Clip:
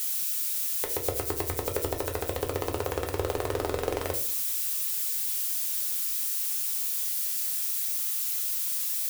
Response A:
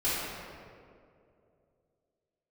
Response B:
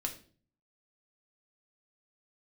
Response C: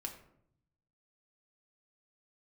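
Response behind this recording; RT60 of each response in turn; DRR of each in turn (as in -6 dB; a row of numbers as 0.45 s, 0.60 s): B; 2.5 s, 0.45 s, 0.70 s; -12.0 dB, 2.0 dB, 2.0 dB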